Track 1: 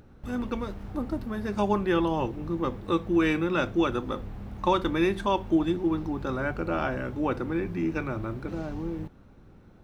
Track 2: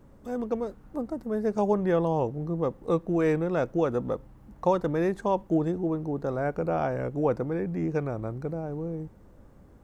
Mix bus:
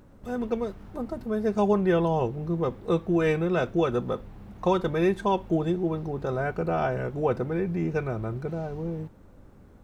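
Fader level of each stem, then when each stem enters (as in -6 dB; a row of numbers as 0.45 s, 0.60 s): -5.0 dB, 0.0 dB; 0.00 s, 0.00 s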